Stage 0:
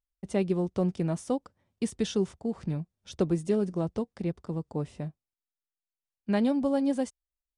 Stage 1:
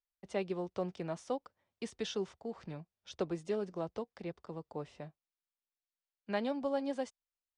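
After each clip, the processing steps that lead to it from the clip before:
three-way crossover with the lows and the highs turned down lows −12 dB, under 430 Hz, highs −21 dB, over 6,500 Hz
level −3 dB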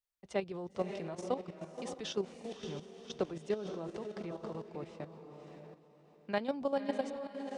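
feedback delay with all-pass diffusion 548 ms, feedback 40%, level −6 dB
output level in coarse steps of 11 dB
level +3.5 dB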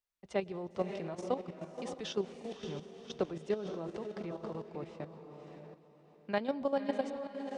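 high-shelf EQ 6,800 Hz −7 dB
on a send at −22 dB: convolution reverb RT60 1.5 s, pre-delay 104 ms
on the sum: level +1 dB

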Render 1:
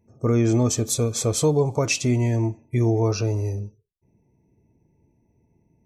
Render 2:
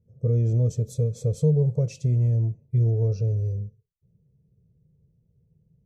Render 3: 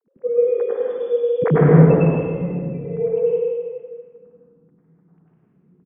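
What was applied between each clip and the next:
drawn EQ curve 100 Hz 0 dB, 160 Hz +5 dB, 290 Hz −22 dB, 500 Hz −2 dB, 790 Hz −24 dB, 1,200 Hz −29 dB, 4,400 Hz −20 dB
three sine waves on the formant tracks; loudspeakers that aren't time-aligned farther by 34 metres −1 dB, 53 metres −3 dB; convolution reverb RT60 1.6 s, pre-delay 89 ms, DRR −4.5 dB; level −4.5 dB

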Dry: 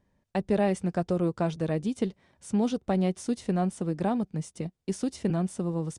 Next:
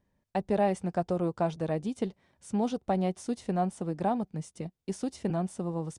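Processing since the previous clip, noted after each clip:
dynamic equaliser 790 Hz, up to +7 dB, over −44 dBFS, Q 1.5
level −4 dB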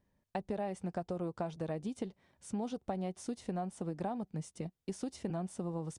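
downward compressor, threshold −32 dBFS, peak gain reduction 10.5 dB
level −2 dB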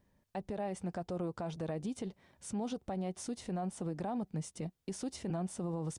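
brickwall limiter −34.5 dBFS, peak gain reduction 10.5 dB
level +4.5 dB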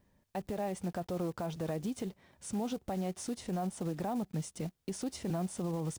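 one scale factor per block 5 bits
level +2 dB

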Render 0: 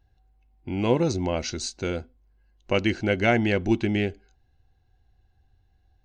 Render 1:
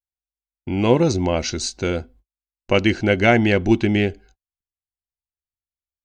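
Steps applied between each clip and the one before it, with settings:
noise gate −53 dBFS, range −46 dB
level +6 dB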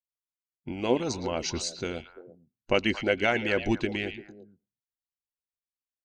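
harmonic and percussive parts rebalanced harmonic −14 dB
echo through a band-pass that steps 114 ms, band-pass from 3,000 Hz, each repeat −1.4 octaves, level −7 dB
level −5.5 dB

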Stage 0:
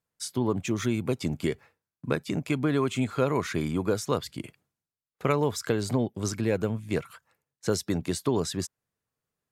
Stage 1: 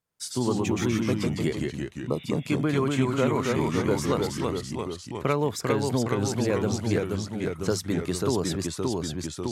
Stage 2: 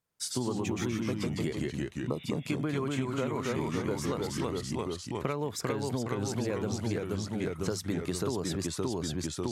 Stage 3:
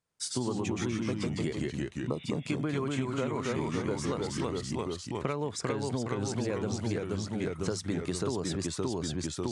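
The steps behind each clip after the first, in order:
healed spectral selection 0:01.79–0:02.22, 1,300–3,900 Hz both; delay with pitch and tempo change per echo 84 ms, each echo −1 semitone, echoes 3
downward compressor, threshold −28 dBFS, peak gain reduction 9.5 dB
downsampling to 22,050 Hz

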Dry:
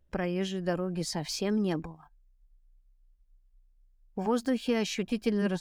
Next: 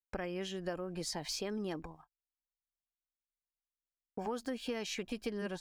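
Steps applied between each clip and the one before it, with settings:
noise gate −50 dBFS, range −45 dB
parametric band 170 Hz −7 dB 1.5 octaves
downward compressor 3 to 1, threshold −35 dBFS, peak gain reduction 8.5 dB
level −1 dB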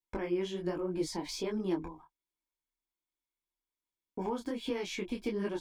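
low-shelf EQ 140 Hz +7.5 dB
hollow resonant body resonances 330/960/2,200/3,400 Hz, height 12 dB, ringing for 30 ms
micro pitch shift up and down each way 44 cents
level +1.5 dB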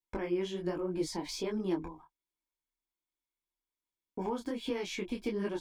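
no processing that can be heard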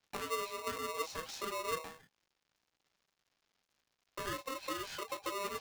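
surface crackle 320 per second −56 dBFS
linear-phase brick-wall low-pass 6,400 Hz
ring modulator with a square carrier 800 Hz
level −5 dB

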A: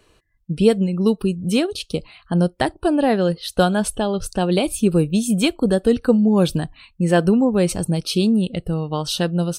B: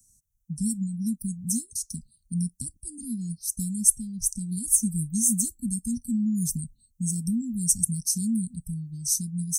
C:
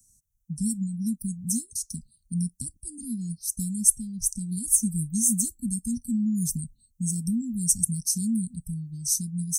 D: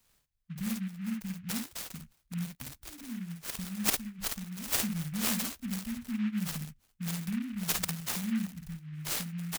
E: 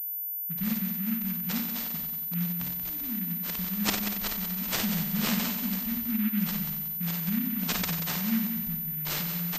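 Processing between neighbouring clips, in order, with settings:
Chebyshev band-stop filter 240–5,900 Hz, order 5; tilt shelving filter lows −9 dB, about 1,400 Hz
no processing that can be heard
on a send: ambience of single reflections 53 ms −4 dB, 67 ms −12.5 dB; on the sum: short delay modulated by noise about 1,900 Hz, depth 0.085 ms; level −8.5 dB
mains-hum notches 50/100/150 Hz; echo machine with several playback heads 92 ms, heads first and second, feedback 47%, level −10 dB; switching amplifier with a slow clock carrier 14,000 Hz; level +3.5 dB

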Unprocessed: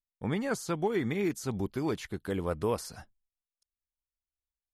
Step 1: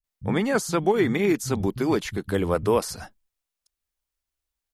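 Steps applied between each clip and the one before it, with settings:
multiband delay without the direct sound lows, highs 40 ms, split 150 Hz
level +9 dB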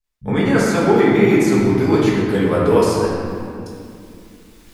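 high-shelf EQ 11,000 Hz −7.5 dB
reversed playback
upward compression, threshold −31 dBFS
reversed playback
convolution reverb RT60 2.5 s, pre-delay 5 ms, DRR −7 dB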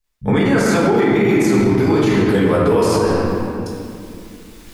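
brickwall limiter −12.5 dBFS, peak gain reduction 10.5 dB
level +6 dB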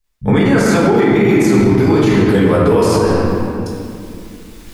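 low-shelf EQ 190 Hz +3.5 dB
level +2 dB

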